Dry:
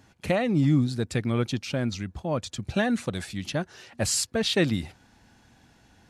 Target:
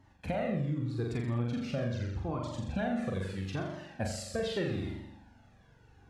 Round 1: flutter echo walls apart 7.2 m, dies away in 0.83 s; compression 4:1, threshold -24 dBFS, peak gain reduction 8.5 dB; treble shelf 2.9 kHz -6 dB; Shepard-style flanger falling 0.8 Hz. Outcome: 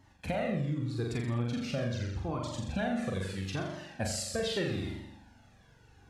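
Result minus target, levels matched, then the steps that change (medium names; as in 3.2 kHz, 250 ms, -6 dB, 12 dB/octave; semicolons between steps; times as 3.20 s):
8 kHz band +6.5 dB
change: treble shelf 2.9 kHz -14 dB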